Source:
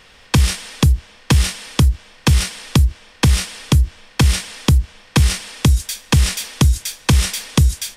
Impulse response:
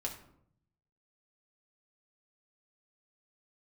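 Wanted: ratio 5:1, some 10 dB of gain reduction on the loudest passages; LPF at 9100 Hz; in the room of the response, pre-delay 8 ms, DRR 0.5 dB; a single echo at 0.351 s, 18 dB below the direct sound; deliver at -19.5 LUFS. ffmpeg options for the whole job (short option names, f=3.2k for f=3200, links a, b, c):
-filter_complex "[0:a]lowpass=9.1k,acompressor=threshold=-20dB:ratio=5,aecho=1:1:351:0.126,asplit=2[a][b];[1:a]atrim=start_sample=2205,adelay=8[c];[b][c]afir=irnorm=-1:irlink=0,volume=-1dB[d];[a][d]amix=inputs=2:normalize=0,volume=3.5dB"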